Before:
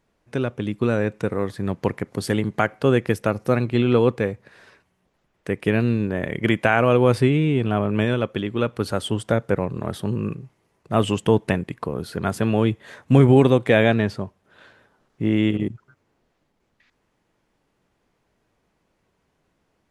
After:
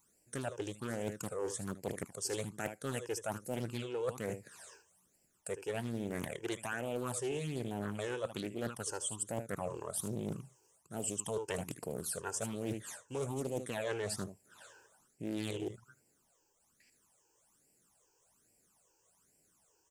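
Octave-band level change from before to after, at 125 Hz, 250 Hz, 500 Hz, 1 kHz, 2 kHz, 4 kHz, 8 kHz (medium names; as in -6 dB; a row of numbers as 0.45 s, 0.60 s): -21.0 dB, -20.0 dB, -17.5 dB, -17.5 dB, -18.0 dB, -13.5 dB, +3.0 dB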